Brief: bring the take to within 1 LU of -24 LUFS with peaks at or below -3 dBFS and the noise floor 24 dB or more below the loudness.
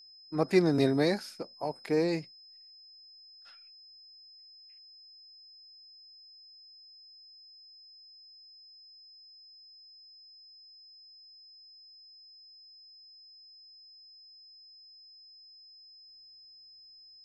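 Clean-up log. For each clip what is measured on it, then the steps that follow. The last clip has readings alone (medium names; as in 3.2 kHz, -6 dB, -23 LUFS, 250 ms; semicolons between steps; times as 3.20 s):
steady tone 5.1 kHz; tone level -52 dBFS; loudness -29.5 LUFS; peak level -11.0 dBFS; loudness target -24.0 LUFS
-> band-stop 5.1 kHz, Q 30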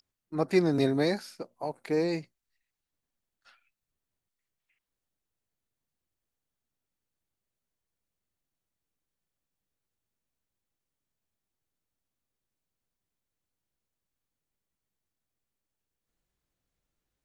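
steady tone not found; loudness -29.0 LUFS; peak level -11.5 dBFS; loudness target -24.0 LUFS
-> trim +5 dB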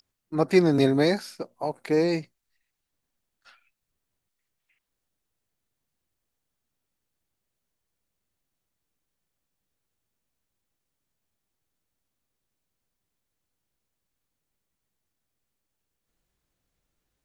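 loudness -24.0 LUFS; peak level -6.5 dBFS; noise floor -83 dBFS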